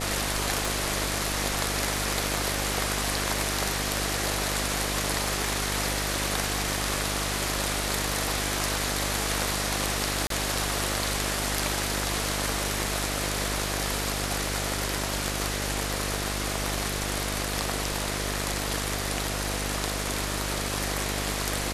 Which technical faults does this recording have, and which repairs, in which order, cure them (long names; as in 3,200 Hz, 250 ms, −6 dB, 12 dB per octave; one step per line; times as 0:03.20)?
mains buzz 50 Hz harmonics 14 −33 dBFS
0:00.65: click
0:10.27–0:10.30: drop-out 33 ms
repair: click removal
hum removal 50 Hz, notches 14
repair the gap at 0:10.27, 33 ms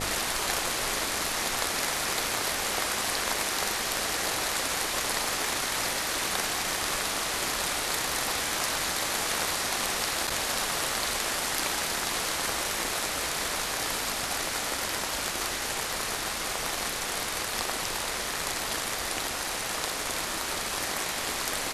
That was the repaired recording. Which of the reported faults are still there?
none of them is left